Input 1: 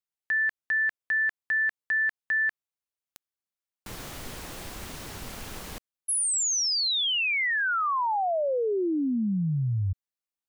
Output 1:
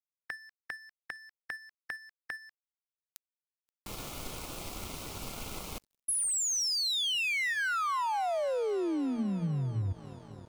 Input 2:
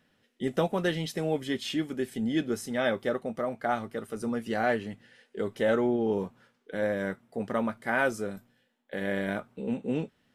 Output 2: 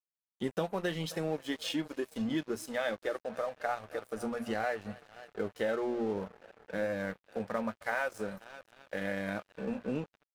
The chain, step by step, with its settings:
mains-hum notches 60/120/180/240 Hz
echo machine with several playback heads 264 ms, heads first and second, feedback 66%, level −22.5 dB
downward compressor 3 to 1, threshold −31 dBFS
noise reduction from a noise print of the clip's start 15 dB
dead-zone distortion −48 dBFS
level +1.5 dB

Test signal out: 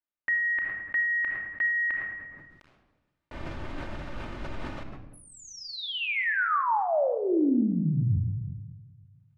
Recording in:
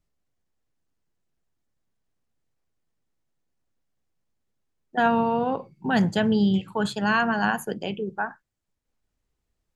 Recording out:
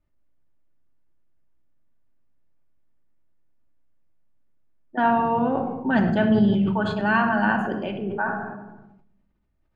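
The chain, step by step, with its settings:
low-pass filter 2,200 Hz 12 dB per octave
rectangular room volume 4,000 cubic metres, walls furnished, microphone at 2.6 metres
level that may fall only so fast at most 42 dB per second

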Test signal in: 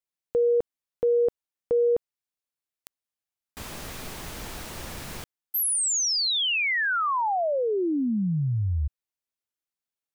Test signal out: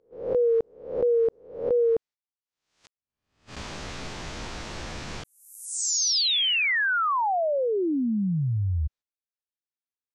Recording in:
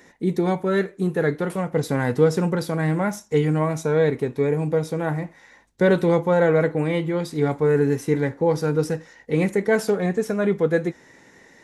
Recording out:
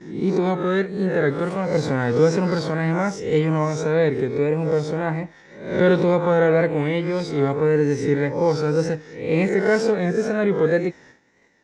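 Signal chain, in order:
peak hold with a rise ahead of every peak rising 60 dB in 0.60 s
tape wow and flutter 1.8 Hz 72 cents
noise gate −46 dBFS, range −13 dB
low-pass filter 6,700 Hz 24 dB per octave

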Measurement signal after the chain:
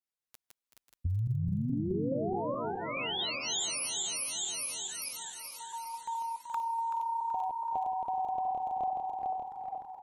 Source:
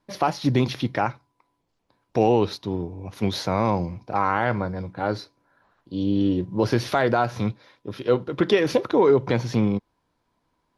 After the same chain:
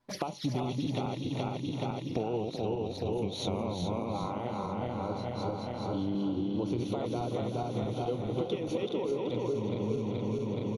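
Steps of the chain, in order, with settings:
feedback delay that plays each chunk backwards 212 ms, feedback 72%, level −1 dB
downward compressor 16 to 1, threshold −28 dBFS
flanger swept by the level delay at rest 8.3 ms, full sweep at −32 dBFS
echo with shifted repeats 379 ms, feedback 43%, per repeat +32 Hz, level −10 dB

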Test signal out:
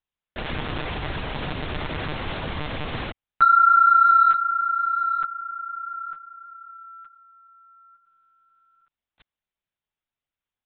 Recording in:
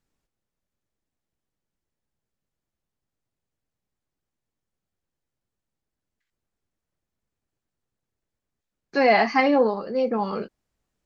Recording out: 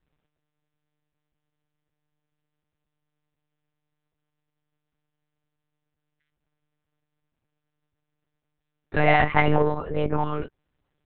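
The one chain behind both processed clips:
dynamic equaliser 540 Hz, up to −5 dB, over −37 dBFS, Q 2.7
in parallel at −6.5 dB: soft clipping −24.5 dBFS
on the sum: one-pitch LPC vocoder at 8 kHz 150 Hz

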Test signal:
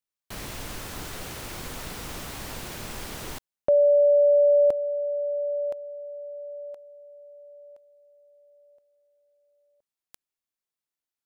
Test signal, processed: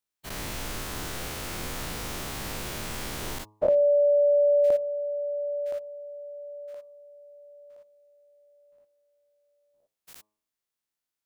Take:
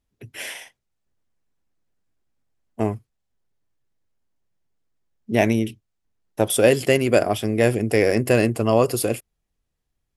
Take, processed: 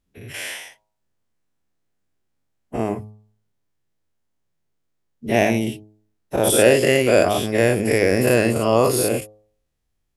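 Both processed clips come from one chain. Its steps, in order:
every bin's largest magnitude spread in time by 120 ms
hum removal 106.1 Hz, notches 11
level −2.5 dB

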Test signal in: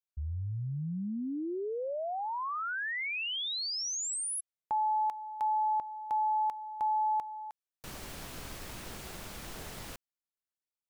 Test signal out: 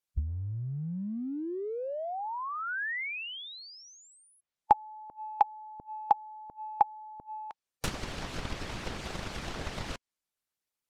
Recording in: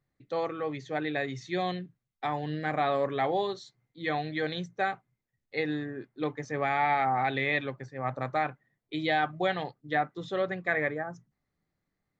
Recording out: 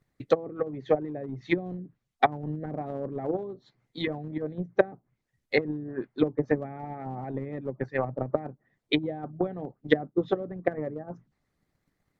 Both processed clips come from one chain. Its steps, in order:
treble cut that deepens with the level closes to 330 Hz, closed at −29 dBFS
transient designer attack +8 dB, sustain 0 dB
harmonic and percussive parts rebalanced percussive +9 dB

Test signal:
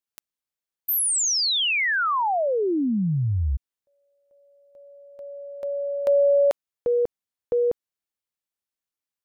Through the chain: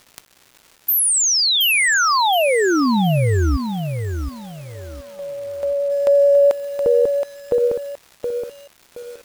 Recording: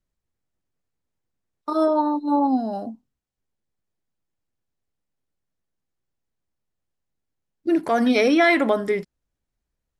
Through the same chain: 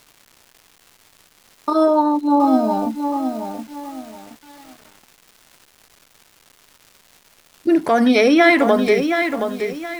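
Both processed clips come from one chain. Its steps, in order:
in parallel at 0 dB: downward compressor 10 to 1, threshold −28 dBFS
on the sum: surface crackle 460 per second −39 dBFS
pitch vibrato 9.3 Hz 9.1 cents
feedback echo at a low word length 721 ms, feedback 35%, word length 7 bits, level −6.5 dB
level +2.5 dB

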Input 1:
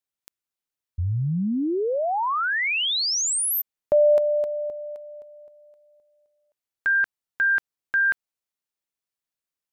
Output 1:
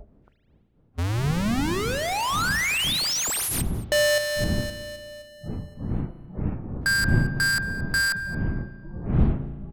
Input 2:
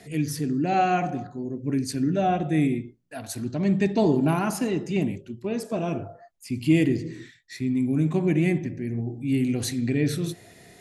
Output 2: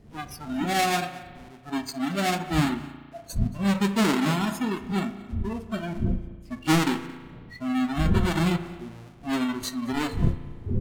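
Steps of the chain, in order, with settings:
each half-wave held at its own peak
wind on the microphone 190 Hz −26 dBFS
noise reduction from a noise print of the clip's start 18 dB
dynamic equaliser 490 Hz, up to −6 dB, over −35 dBFS, Q 1.1
single-tap delay 225 ms −21.5 dB
spring reverb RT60 1.6 s, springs 35 ms, chirp 50 ms, DRR 11.5 dB
linearly interpolated sample-rate reduction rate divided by 2×
level −3 dB

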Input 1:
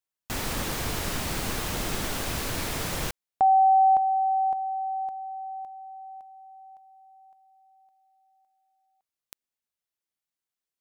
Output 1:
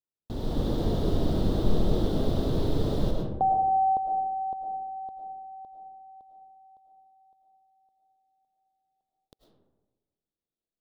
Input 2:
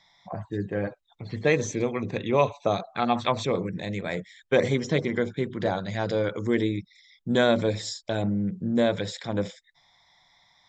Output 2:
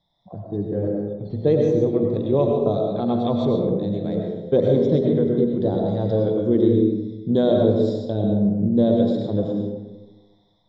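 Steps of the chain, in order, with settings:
drawn EQ curve 450 Hz 0 dB, 2,400 Hz −29 dB, 3,600 Hz −10 dB, 6,800 Hz −27 dB
automatic gain control gain up to 5 dB
comb and all-pass reverb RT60 1.2 s, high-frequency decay 0.4×, pre-delay 65 ms, DRR 0.5 dB

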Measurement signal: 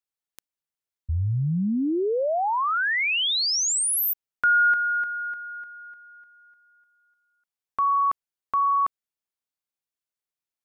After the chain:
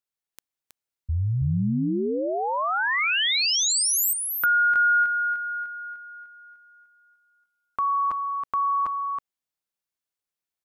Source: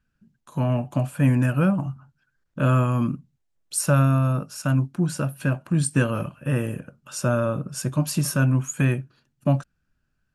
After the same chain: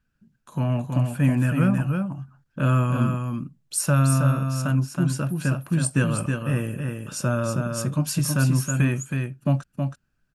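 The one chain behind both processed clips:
dynamic equaliser 590 Hz, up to −4 dB, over −34 dBFS, Q 0.72
single-tap delay 321 ms −5 dB

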